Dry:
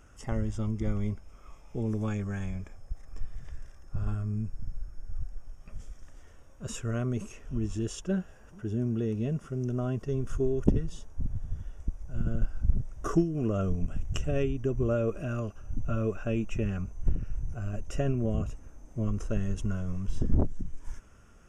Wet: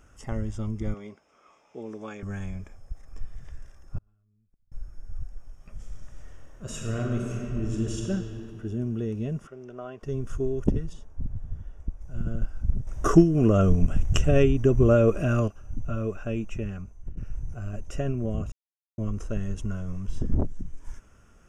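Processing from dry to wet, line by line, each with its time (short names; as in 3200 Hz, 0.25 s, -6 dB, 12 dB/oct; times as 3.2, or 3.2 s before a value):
0.94–2.23 BPF 350–6000 Hz
3.98–4.72 flipped gate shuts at -28 dBFS, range -37 dB
5.75–8.07 reverb throw, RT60 2.9 s, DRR -1 dB
9.47–10.03 three-band isolator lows -20 dB, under 390 Hz, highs -16 dB, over 4100 Hz
10.93–12.01 high shelf 2800 Hz -9 dB
12.87–15.48 gain +9 dB
16.2–17.17 fade out equal-power, to -15.5 dB
18.52–18.98 mute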